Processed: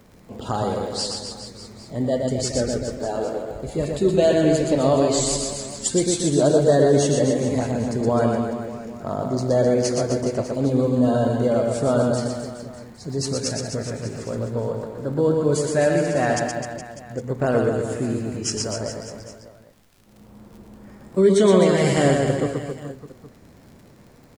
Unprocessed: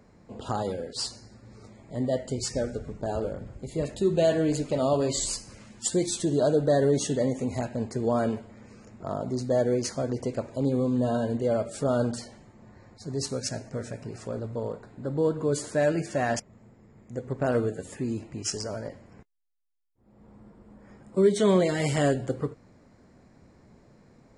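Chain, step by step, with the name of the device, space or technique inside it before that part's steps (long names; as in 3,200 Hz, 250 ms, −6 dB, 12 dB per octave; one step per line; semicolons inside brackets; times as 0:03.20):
0:02.83–0:03.51: high-pass filter 290 Hz 12 dB per octave
reverse bouncing-ball delay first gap 120 ms, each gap 1.15×, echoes 5
vinyl LP (surface crackle 62 per second −45 dBFS; pink noise bed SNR 40 dB)
level +4.5 dB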